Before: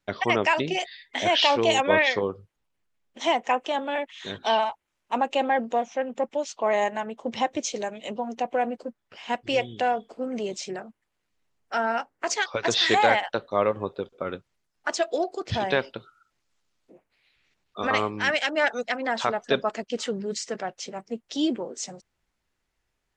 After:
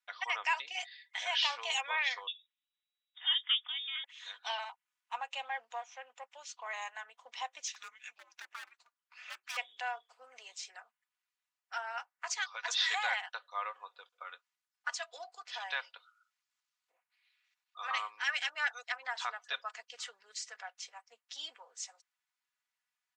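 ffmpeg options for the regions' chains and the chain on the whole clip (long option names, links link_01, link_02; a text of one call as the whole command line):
ffmpeg -i in.wav -filter_complex "[0:a]asettb=1/sr,asplit=3[link_01][link_02][link_03];[link_01]atrim=end=2.274[link_04];[link_02]atrim=start=2.27:end=4.04,asetpts=PTS-STARTPTS,afade=type=in:duration=0.004:curve=qsin,afade=type=out:start_time=1.766:duration=0.004:curve=qsin,acrossover=split=170 2500:gain=0.2 1 0.126[link_05][link_06][link_07];[link_05][link_06][link_07]amix=inputs=3:normalize=0,lowpass=frequency=3300:width_type=q:width=0.5098,lowpass=frequency=3300:width_type=q:width=0.6013,lowpass=frequency=3300:width_type=q:width=0.9,lowpass=frequency=3300:width_type=q:width=2.563,afreqshift=-3900[link_08];[link_03]atrim=start=4.036[link_09];[link_04][link_08]acrossfade=duration=0.004:curve1=hsin:curve2=qsin[link_10];[link_10][link_09]acrossfade=duration=0.004:curve1=qsin:curve2=hsin,asettb=1/sr,asplit=3[link_11][link_12][link_13];[link_11]atrim=end=7.674[link_14];[link_12]atrim=start=7.67:end=9.57,asetpts=PTS-STARTPTS,afade=type=in:duration=0.004:curve=qsin,afade=type=out:start_time=1.896:duration=0.004:curve=qsin,aeval=exprs='0.0708*(abs(mod(val(0)/0.0708+3,4)-2)-1)':channel_layout=same,afreqshift=-370[link_15];[link_13]atrim=start=9.566[link_16];[link_14][link_15]acrossfade=duration=0.004:curve1=hsin:curve2=qsin[link_17];[link_17][link_16]acrossfade=duration=0.004:curve1=qsin:curve2=hsin,highpass=frequency=960:width=0.5412,highpass=frequency=960:width=1.3066,aecho=1:1:4.1:0.49,volume=-9dB" out.wav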